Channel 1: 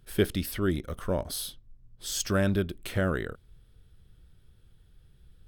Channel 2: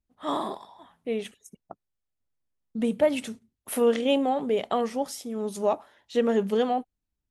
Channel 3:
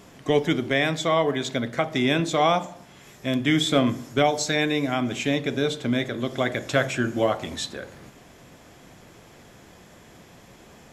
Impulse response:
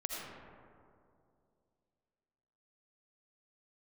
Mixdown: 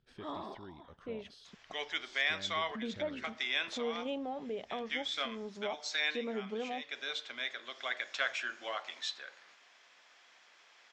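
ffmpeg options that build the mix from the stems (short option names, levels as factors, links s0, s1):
-filter_complex "[0:a]highpass=f=120:p=1,acompressor=threshold=0.00631:ratio=2,volume=0.251[s0];[1:a]acompressor=threshold=0.00501:ratio=1.5,lowpass=8300,volume=0.531,asplit=2[s1][s2];[2:a]highpass=1300,adelay=1450,volume=0.531[s3];[s2]apad=whole_len=545938[s4];[s3][s4]sidechaincompress=threshold=0.00562:ratio=5:attack=16:release=280[s5];[s0][s1][s5]amix=inputs=3:normalize=0,lowpass=f=5600:w=0.5412,lowpass=f=5600:w=1.3066"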